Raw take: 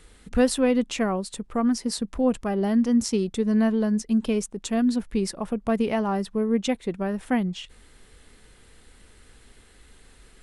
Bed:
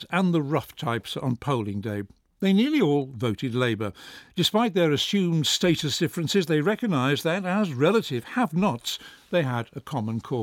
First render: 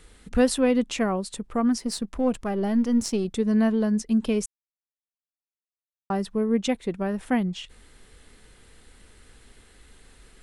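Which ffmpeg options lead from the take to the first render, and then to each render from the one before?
-filter_complex "[0:a]asettb=1/sr,asplit=3[s0][s1][s2];[s0]atrim=end=1.794[s3];[s1]atrim=start=1.79:end=3.25,asetpts=PTS-STARTPTS,afade=t=in:d=0.004:c=qsin,afade=t=out:st=1.456:d=0.004:c=qsin,aeval=exprs='if(lt(val(0),0),0.708*val(0),val(0))':c=same[s4];[s2]atrim=start=3.246[s5];[s3][s4]acrossfade=d=0.004:c1=hsin:c2=qsin[s6];[s6][s5]acrossfade=d=0.004:c1=qsin:c2=hsin,asplit=3[s7][s8][s9];[s7]atrim=end=4.46,asetpts=PTS-STARTPTS,afade=t=out:st=4.456:d=0.004:c=hsin[s10];[s8]atrim=start=4.46:end=6.1,asetpts=PTS-STARTPTS,volume=0[s11];[s9]atrim=start=6.1,asetpts=PTS-STARTPTS,afade=t=in:d=0.004:c=hsin[s12];[s10][s11][s12]concat=n=3:v=0:a=1"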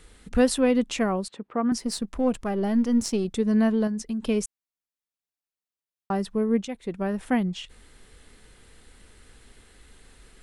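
-filter_complex "[0:a]asettb=1/sr,asplit=3[s0][s1][s2];[s0]atrim=end=1.284[s3];[s1]atrim=start=1.28:end=1.72,asetpts=PTS-STARTPTS,afade=t=in:d=0.004:c=qsin,afade=t=out:st=0.436:d=0.004:c=qsin,highpass=230,lowpass=2500[s4];[s2]atrim=start=1.716[s5];[s3][s4]acrossfade=d=0.004:c1=hsin:c2=qsin[s6];[s6][s5]acrossfade=d=0.004:c1=qsin:c2=hsin,asettb=1/sr,asplit=3[s7][s8][s9];[s7]atrim=end=3.874[s10];[s8]atrim=start=3.87:end=4.29,asetpts=PTS-STARTPTS,afade=t=in:d=0.004:c=qsin,afade=t=out:st=0.416:d=0.004:c=qsin,acompressor=threshold=0.0501:ratio=6:attack=3.2:release=140:knee=1:detection=peak[s11];[s9]atrim=start=4.286[s12];[s10][s11]acrossfade=d=0.004:c1=hsin:c2=qsin[s13];[s13][s12]acrossfade=d=0.004:c1=qsin:c2=hsin,asplit=2[s14][s15];[s14]atrim=end=6.65,asetpts=PTS-STARTPTS,afade=t=out:st=6.646:d=0.004:c=hsin:silence=0.237137[s16];[s15]atrim=start=6.65,asetpts=PTS-STARTPTS,afade=t=in:d=0.4:silence=0.237137[s17];[s16][s17]concat=n=2:v=0:a=1"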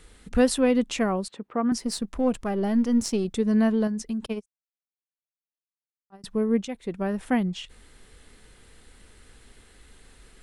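-filter_complex "[0:a]asettb=1/sr,asplit=3[s0][s1][s2];[s0]atrim=end=4.264[s3];[s1]atrim=start=4.26:end=6.24,asetpts=PTS-STARTPTS,afade=t=in:d=0.004:c=qsin,afade=t=out:st=1.976:d=0.004:c=qsin,agate=range=0.0126:threshold=0.0794:ratio=16:release=100:detection=peak[s4];[s2]atrim=start=6.236[s5];[s3][s4]acrossfade=d=0.004:c1=hsin:c2=qsin[s6];[s6][s5]acrossfade=d=0.004:c1=qsin:c2=hsin"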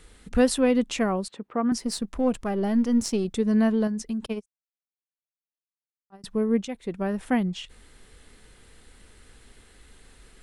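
-af anull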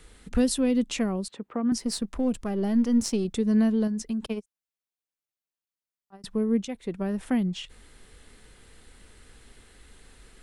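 -filter_complex "[0:a]acrossover=split=400|3000[s0][s1][s2];[s1]acompressor=threshold=0.0178:ratio=6[s3];[s0][s3][s2]amix=inputs=3:normalize=0"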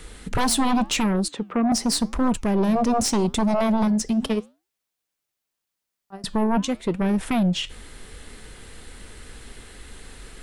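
-af "aeval=exprs='0.237*sin(PI/2*3.55*val(0)/0.237)':c=same,flanger=delay=3.3:depth=8.2:regen=-88:speed=0.85:shape=triangular"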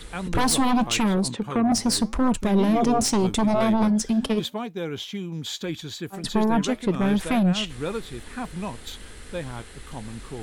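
-filter_complex "[1:a]volume=0.355[s0];[0:a][s0]amix=inputs=2:normalize=0"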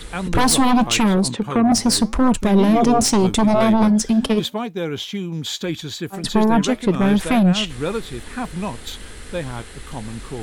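-af "volume=1.88"

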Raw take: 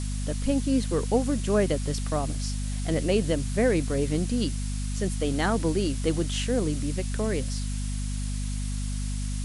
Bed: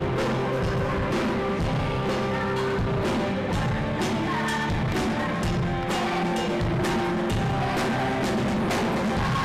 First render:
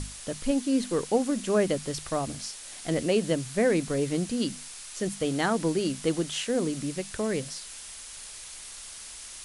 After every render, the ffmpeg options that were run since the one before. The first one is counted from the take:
-af "bandreject=f=50:t=h:w=6,bandreject=f=100:t=h:w=6,bandreject=f=150:t=h:w=6,bandreject=f=200:t=h:w=6,bandreject=f=250:t=h:w=6"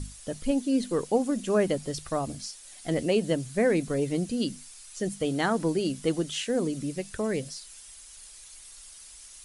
-af "afftdn=nr=10:nf=-43"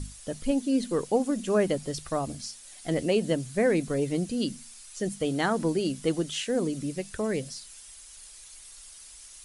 -af "bandreject=f=115.9:t=h:w=4,bandreject=f=231.8:t=h:w=4"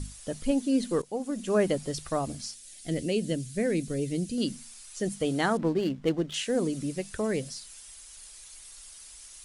-filter_complex "[0:a]asettb=1/sr,asplit=3[s0][s1][s2];[s0]atrim=end=2.544[s3];[s1]atrim=start=2.54:end=4.38,asetpts=PTS-STARTPTS,afade=t=in:d=0.004:c=qsin,afade=t=out:st=1.836:d=0.004:c=qsin,equalizer=f=990:w=0.96:g=-15[s4];[s2]atrim=start=4.376[s5];[s3][s4]acrossfade=d=0.004:c1=hsin:c2=qsin[s6];[s6][s5]acrossfade=d=0.004:c1=qsin:c2=hsin,asettb=1/sr,asplit=3[s7][s8][s9];[s7]atrim=end=5.574[s10];[s8]atrim=start=5.57:end=6.34,asetpts=PTS-STARTPTS,afade=t=in:d=0.004:c=qsin,afade=t=out:st=0.766:d=0.004:c=qsin,adynamicsmooth=sensitivity=6.5:basefreq=1300[s11];[s9]atrim=start=6.336[s12];[s10][s11]acrossfade=d=0.004:c1=hsin:c2=qsin[s13];[s13][s12]acrossfade=d=0.004:c1=qsin:c2=hsin,asplit=2[s14][s15];[s14]atrim=end=1.02,asetpts=PTS-STARTPTS,afade=t=out:st=1.016:d=0.004:c=hsin:silence=0.188365[s16];[s15]atrim=start=1.02,asetpts=PTS-STARTPTS,afade=t=in:d=0.59:silence=0.188365[s17];[s16][s17]concat=n=2:v=0:a=1"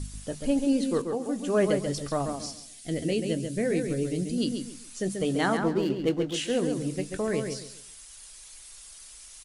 -filter_complex "[0:a]asplit=2[s0][s1];[s1]adelay=21,volume=0.224[s2];[s0][s2]amix=inputs=2:normalize=0,asplit=2[s3][s4];[s4]adelay=137,lowpass=f=3700:p=1,volume=0.531,asplit=2[s5][s6];[s6]adelay=137,lowpass=f=3700:p=1,volume=0.27,asplit=2[s7][s8];[s8]adelay=137,lowpass=f=3700:p=1,volume=0.27,asplit=2[s9][s10];[s10]adelay=137,lowpass=f=3700:p=1,volume=0.27[s11];[s3][s5][s7][s9][s11]amix=inputs=5:normalize=0"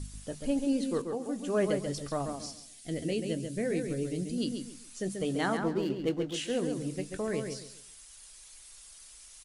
-af "volume=0.596"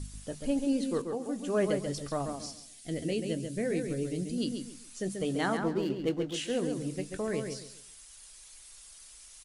-af anull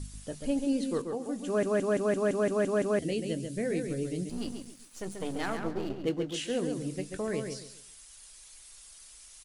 -filter_complex "[0:a]asettb=1/sr,asplit=3[s0][s1][s2];[s0]atrim=end=4.294[s3];[s1]atrim=start=4.29:end=6.05,asetpts=PTS-STARTPTS,afade=t=in:d=0.004:c=qsin,afade=t=out:st=1.756:d=0.004:c=qsin,aeval=exprs='if(lt(val(0),0),0.251*val(0),val(0))':c=same[s4];[s2]atrim=start=6.046[s5];[s3][s4]acrossfade=d=0.004:c1=hsin:c2=qsin[s6];[s6][s5]acrossfade=d=0.004:c1=qsin:c2=hsin,asplit=10[s7][s8][s9][s10][s11][s12][s13][s14][s15][s16];[s7]atrim=end=1.632[s17];[s8]atrim=start=1.458:end=1.632[s18];[s9]atrim=start=1.458:end=1.632[s19];[s10]atrim=start=1.458:end=1.632[s20];[s11]atrim=start=1.458:end=1.632[s21];[s12]atrim=start=1.458:end=1.632[s22];[s13]atrim=start=1.458:end=1.632[s23];[s14]atrim=start=1.458:end=1.632[s24];[s15]atrim=start=1.458:end=1.632[s25];[s16]atrim=start=2.988[s26];[s17][s18]acrossfade=d=0.004:c1=hsin:c2=hsin[s27];[s27][s19]acrossfade=d=0.004:c1=hsin:c2=hsin[s28];[s28][s20]acrossfade=d=0.004:c1=hsin:c2=hsin[s29];[s29][s21]acrossfade=d=0.004:c1=hsin:c2=hsin[s30];[s30][s22]acrossfade=d=0.004:c1=hsin:c2=hsin[s31];[s31][s23]acrossfade=d=0.004:c1=hsin:c2=hsin[s32];[s32][s24]acrossfade=d=0.004:c1=hsin:c2=hsin[s33];[s33][s25]acrossfade=d=0.004:c1=hsin:c2=hsin[s34];[s34][s26]acrossfade=d=0.004:c1=hsin:c2=hsin"

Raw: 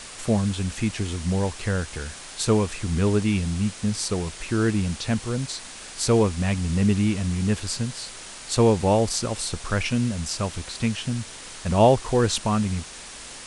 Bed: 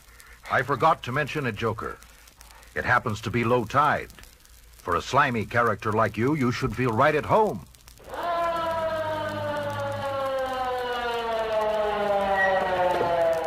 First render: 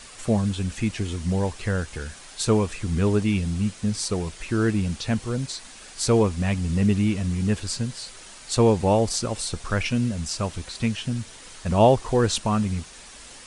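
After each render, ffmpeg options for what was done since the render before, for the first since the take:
-af "afftdn=nr=6:nf=-40"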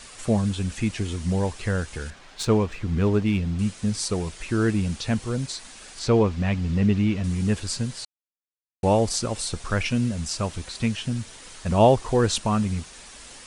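-filter_complex "[0:a]asettb=1/sr,asplit=3[s0][s1][s2];[s0]atrim=end=2.104[s3];[s1]atrim=start=2.1:end=3.59,asetpts=PTS-STARTPTS,afade=t=in:d=0.004:c=qsin,afade=t=out:st=1.486:d=0.004:c=qsin,adynamicsmooth=sensitivity=3.5:basefreq=3600[s4];[s2]atrim=start=3.586[s5];[s3][s4]acrossfade=d=0.004:c1=hsin:c2=qsin[s6];[s6][s5]acrossfade=d=0.004:c1=qsin:c2=hsin,asettb=1/sr,asplit=3[s7][s8][s9];[s7]atrim=end=5.994[s10];[s8]atrim=start=5.99:end=7.24,asetpts=PTS-STARTPTS,afade=t=in:d=0.004:c=qsin,afade=t=out:st=1.246:d=0.004:c=qsin,lowpass=4400[s11];[s9]atrim=start=7.236[s12];[s10][s11]acrossfade=d=0.004:c1=hsin:c2=qsin[s13];[s13][s12]acrossfade=d=0.004:c1=qsin:c2=hsin,asplit=3[s14][s15][s16];[s14]atrim=end=8.05,asetpts=PTS-STARTPTS,afade=t=out:st=8.046:d=0.004:c=hsin[s17];[s15]atrim=start=8.05:end=8.83,asetpts=PTS-STARTPTS,volume=0[s18];[s16]atrim=start=8.83,asetpts=PTS-STARTPTS,afade=t=in:d=0.004:c=hsin[s19];[s17][s18][s19]concat=n=3:v=0:a=1"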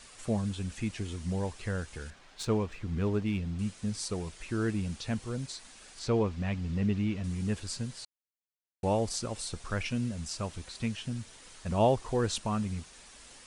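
-af "volume=0.376"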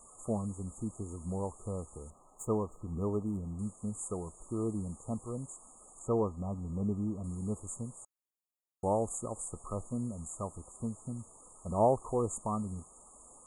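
-af "afftfilt=real='re*(1-between(b*sr/4096,1300,6600))':imag='im*(1-between(b*sr/4096,1300,6600))':win_size=4096:overlap=0.75,lowshelf=f=260:g=-6.5"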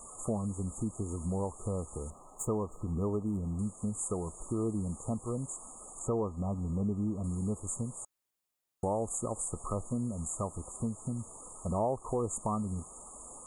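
-filter_complex "[0:a]asplit=2[s0][s1];[s1]alimiter=level_in=1.12:limit=0.0631:level=0:latency=1:release=252,volume=0.891,volume=1.41[s2];[s0][s2]amix=inputs=2:normalize=0,acompressor=threshold=0.02:ratio=2"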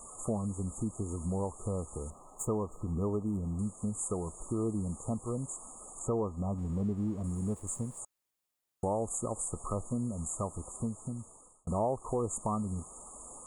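-filter_complex "[0:a]asplit=3[s0][s1][s2];[s0]afade=t=out:st=6.57:d=0.02[s3];[s1]aeval=exprs='sgn(val(0))*max(abs(val(0))-0.00119,0)':c=same,afade=t=in:st=6.57:d=0.02,afade=t=out:st=7.98:d=0.02[s4];[s2]afade=t=in:st=7.98:d=0.02[s5];[s3][s4][s5]amix=inputs=3:normalize=0,asplit=2[s6][s7];[s6]atrim=end=11.67,asetpts=PTS-STARTPTS,afade=t=out:st=10.6:d=1.07:c=qsin[s8];[s7]atrim=start=11.67,asetpts=PTS-STARTPTS,afade=t=in:d=0.004:c=hsin[s9];[s8][s9]concat=n=2:v=0:a=1"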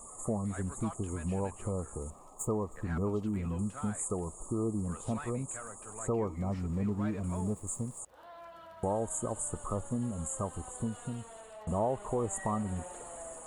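-filter_complex "[1:a]volume=0.0631[s0];[0:a][s0]amix=inputs=2:normalize=0"

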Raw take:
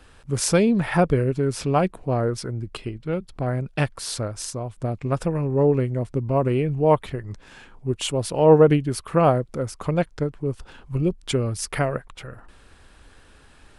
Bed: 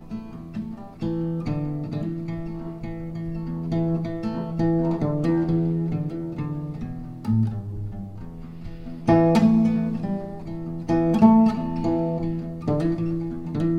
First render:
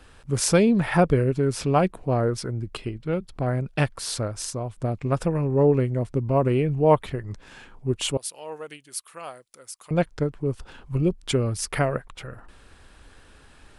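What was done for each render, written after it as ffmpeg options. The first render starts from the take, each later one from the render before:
-filter_complex "[0:a]asettb=1/sr,asplit=3[s0][s1][s2];[s0]atrim=end=8.174[s3];[s1]atrim=start=8.17:end=9.91,asetpts=PTS-STARTPTS,afade=t=in:d=0.004:c=qsin,afade=t=out:st=1.736:d=0.004:c=qsin,aderivative[s4];[s2]atrim=start=9.906[s5];[s3][s4]acrossfade=d=0.004:c1=hsin:c2=qsin[s6];[s6][s5]acrossfade=d=0.004:c1=qsin:c2=hsin"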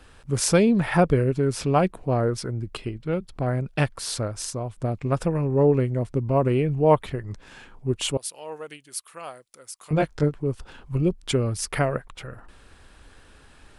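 -filter_complex "[0:a]asettb=1/sr,asplit=3[s0][s1][s2];[s0]atrim=end=9.804[s3];[s1]atrim=start=9.8:end=10.34,asetpts=PTS-STARTPTS,afade=t=in:d=0.004:c=qsin,afade=t=out:st=0.536:d=0.004:c=qsin,asplit=2[s4][s5];[s5]adelay=20,volume=0.75[s6];[s4][s6]amix=inputs=2:normalize=0,atrim=end_sample=23814[s7];[s2]atrim=start=10.336[s8];[s3][s7]acrossfade=d=0.004:c1=hsin:c2=qsin[s9];[s9][s8]acrossfade=d=0.004:c1=qsin:c2=hsin"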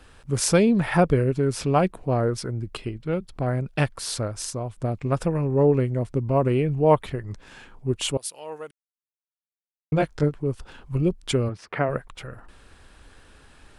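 -filter_complex "[0:a]asplit=3[s0][s1][s2];[s0]afade=t=out:st=11.48:d=0.02[s3];[s1]highpass=150,lowpass=2200,afade=t=in:st=11.48:d=0.02,afade=t=out:st=11.88:d=0.02[s4];[s2]afade=t=in:st=11.88:d=0.02[s5];[s3][s4][s5]amix=inputs=3:normalize=0,asplit=3[s6][s7][s8];[s6]atrim=end=8.71,asetpts=PTS-STARTPTS,afade=t=out:st=8.706:d=0.004:c=hsin[s9];[s7]atrim=start=8.71:end=9.92,asetpts=PTS-STARTPTS,volume=0[s10];[s8]atrim=start=9.92,asetpts=PTS-STARTPTS,afade=t=in:d=0.004:c=hsin[s11];[s9][s10][s11]concat=n=3:v=0:a=1"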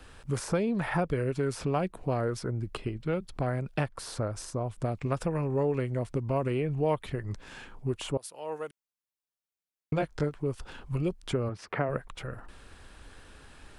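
-filter_complex "[0:a]acrossover=split=580|1600[s0][s1][s2];[s0]acompressor=threshold=0.0355:ratio=4[s3];[s1]acompressor=threshold=0.0224:ratio=4[s4];[s2]acompressor=threshold=0.00708:ratio=4[s5];[s3][s4][s5]amix=inputs=3:normalize=0"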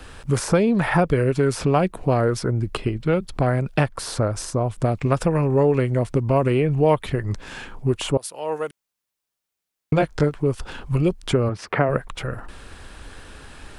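-af "volume=3.16"

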